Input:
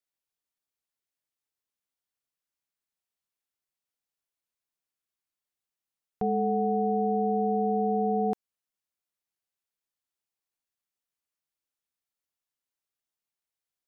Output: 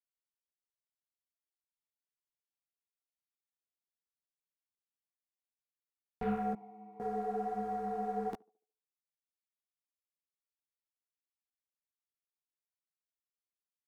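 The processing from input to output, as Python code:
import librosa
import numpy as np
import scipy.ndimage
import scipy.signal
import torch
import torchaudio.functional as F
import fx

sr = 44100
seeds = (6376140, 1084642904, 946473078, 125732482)

y = fx.dereverb_blind(x, sr, rt60_s=1.6)
y = fx.leveller(y, sr, passes=2)
y = fx.vowel_filter(y, sr, vowel='u', at=(6.53, 7.0))
y = fx.chorus_voices(y, sr, voices=6, hz=1.4, base_ms=15, depth_ms=3.0, mix_pct=50)
y = fx.echo_banded(y, sr, ms=72, feedback_pct=43, hz=490.0, wet_db=-23.5)
y = y * librosa.db_to_amplitude(-6.0)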